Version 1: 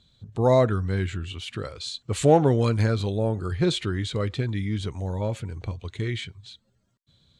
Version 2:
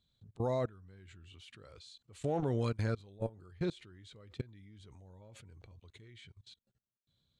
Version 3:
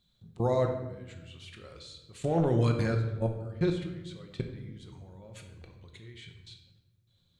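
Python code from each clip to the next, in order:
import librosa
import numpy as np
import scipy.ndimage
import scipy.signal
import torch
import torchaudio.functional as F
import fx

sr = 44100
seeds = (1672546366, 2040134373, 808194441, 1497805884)

y1 = fx.level_steps(x, sr, step_db=23)
y1 = F.gain(torch.from_numpy(y1), -9.0).numpy()
y2 = fx.room_shoebox(y1, sr, seeds[0], volume_m3=520.0, walls='mixed', distance_m=0.94)
y2 = F.gain(torch.from_numpy(y2), 5.0).numpy()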